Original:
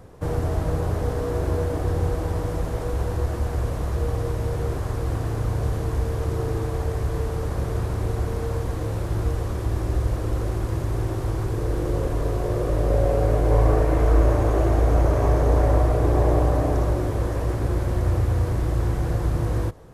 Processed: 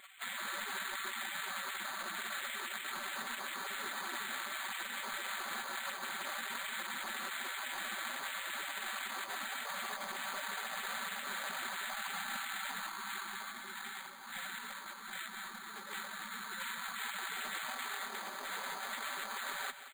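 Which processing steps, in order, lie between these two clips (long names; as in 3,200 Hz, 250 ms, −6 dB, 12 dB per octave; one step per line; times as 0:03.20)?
gate on every frequency bin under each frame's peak −30 dB weak
low shelf with overshoot 170 Hz −8.5 dB, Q 1.5
comb filter 5.2 ms, depth 54%
compressor whose output falls as the input rises −47 dBFS, ratio −0.5
brickwall limiter −38.5 dBFS, peak gain reduction 7.5 dB
on a send: single-tap delay 178 ms −12 dB
on the sum: bad sample-rate conversion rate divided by 8×, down filtered, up hold
level +10.5 dB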